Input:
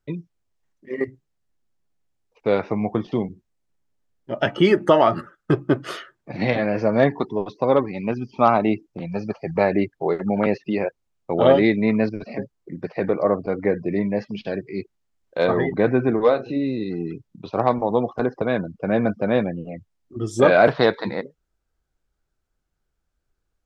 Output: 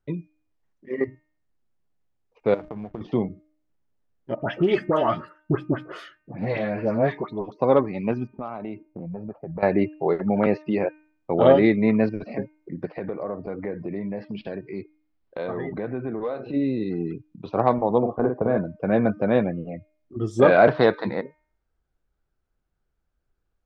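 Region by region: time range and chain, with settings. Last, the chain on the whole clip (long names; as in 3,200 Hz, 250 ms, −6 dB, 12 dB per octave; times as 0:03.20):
0:02.54–0:03.01: mains-hum notches 60/120/180/240/300 Hz + slack as between gear wheels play −28.5 dBFS + downward compressor 16 to 1, threshold −29 dBFS
0:04.35–0:07.52: flanger 1.6 Hz, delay 0.4 ms, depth 1.8 ms, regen −58% + all-pass dispersion highs, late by 90 ms, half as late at 1,500 Hz + highs frequency-modulated by the lows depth 0.13 ms
0:08.27–0:09.63: low-pass that shuts in the quiet parts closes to 360 Hz, open at −11.5 dBFS + downward compressor 5 to 1, threshold −30 dBFS
0:12.85–0:16.54: Butterworth low-pass 5,200 Hz 48 dB per octave + downward compressor 3 to 1, threshold −28 dBFS
0:17.98–0:18.58: low-pass filter 1,200 Hz + double-tracking delay 46 ms −5 dB
whole clip: low-pass filter 2,200 Hz 6 dB per octave; hum removal 306.4 Hz, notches 9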